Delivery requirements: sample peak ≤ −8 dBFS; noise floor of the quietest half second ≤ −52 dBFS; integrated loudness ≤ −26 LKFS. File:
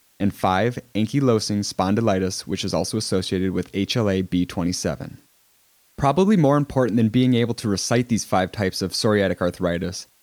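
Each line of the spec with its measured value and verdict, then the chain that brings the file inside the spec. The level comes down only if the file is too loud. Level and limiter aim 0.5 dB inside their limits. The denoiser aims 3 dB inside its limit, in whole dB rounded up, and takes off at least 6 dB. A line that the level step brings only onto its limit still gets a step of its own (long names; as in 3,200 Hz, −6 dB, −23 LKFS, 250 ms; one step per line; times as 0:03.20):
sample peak −5.5 dBFS: out of spec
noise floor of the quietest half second −60 dBFS: in spec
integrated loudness −21.5 LKFS: out of spec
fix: level −5 dB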